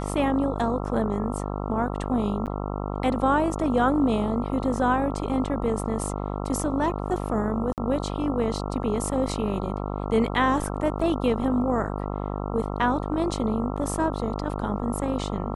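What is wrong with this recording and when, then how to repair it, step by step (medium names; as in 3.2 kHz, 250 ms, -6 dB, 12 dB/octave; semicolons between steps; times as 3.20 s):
buzz 50 Hz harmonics 27 -30 dBFS
2.46–2.47 s: dropout 8.2 ms
7.73–7.78 s: dropout 48 ms
10.99–11.00 s: dropout 5.2 ms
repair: de-hum 50 Hz, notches 27; interpolate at 2.46 s, 8.2 ms; interpolate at 7.73 s, 48 ms; interpolate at 10.99 s, 5.2 ms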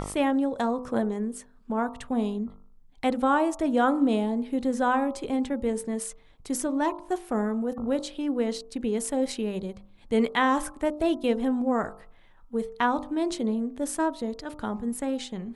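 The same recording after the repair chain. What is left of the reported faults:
nothing left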